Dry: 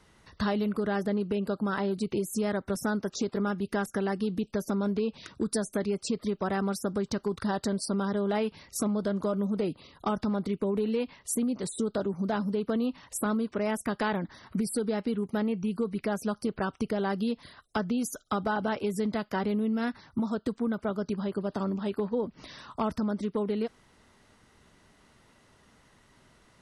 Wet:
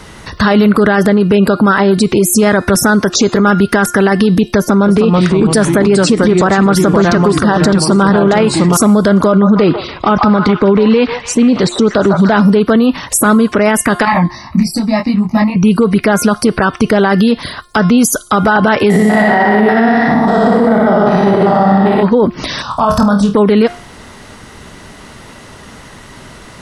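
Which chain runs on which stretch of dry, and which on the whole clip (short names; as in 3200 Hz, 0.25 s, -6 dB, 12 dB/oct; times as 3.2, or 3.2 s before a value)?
4.58–8.77 high shelf 4200 Hz -7.5 dB + echoes that change speed 0.299 s, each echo -2 st, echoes 3, each echo -6 dB
9.27–12.41 LPF 5600 Hz 24 dB/oct + delay with a stepping band-pass 0.148 s, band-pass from 980 Hz, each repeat 0.7 oct, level -4.5 dB
14.05–15.56 fixed phaser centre 2200 Hz, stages 8 + detuned doubles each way 24 cents
18.9–22.03 stepped spectrum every 0.2 s + small resonant body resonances 750/1900 Hz, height 16 dB, ringing for 25 ms + flutter echo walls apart 10.5 m, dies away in 1 s
22.62–23.34 fixed phaser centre 860 Hz, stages 4 + flutter echo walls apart 4.3 m, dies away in 0.27 s
whole clip: de-hum 353.9 Hz, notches 32; dynamic EQ 1600 Hz, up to +6 dB, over -47 dBFS, Q 0.98; maximiser +27.5 dB; gain -1 dB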